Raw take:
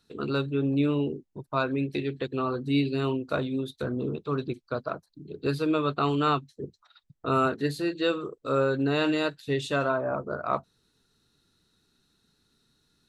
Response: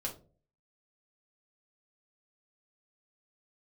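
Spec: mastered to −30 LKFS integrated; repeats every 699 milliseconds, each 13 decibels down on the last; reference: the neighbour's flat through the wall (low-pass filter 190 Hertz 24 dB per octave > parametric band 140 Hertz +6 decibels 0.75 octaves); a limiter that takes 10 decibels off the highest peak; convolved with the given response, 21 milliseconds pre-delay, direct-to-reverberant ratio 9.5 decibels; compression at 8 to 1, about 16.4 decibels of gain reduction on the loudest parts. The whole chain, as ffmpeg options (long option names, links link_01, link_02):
-filter_complex "[0:a]acompressor=threshold=-38dB:ratio=8,alimiter=level_in=11dB:limit=-24dB:level=0:latency=1,volume=-11dB,aecho=1:1:699|1398|2097:0.224|0.0493|0.0108,asplit=2[link_01][link_02];[1:a]atrim=start_sample=2205,adelay=21[link_03];[link_02][link_03]afir=irnorm=-1:irlink=0,volume=-10.5dB[link_04];[link_01][link_04]amix=inputs=2:normalize=0,lowpass=frequency=190:width=0.5412,lowpass=frequency=190:width=1.3066,equalizer=frequency=140:width_type=o:width=0.75:gain=6,volume=16dB"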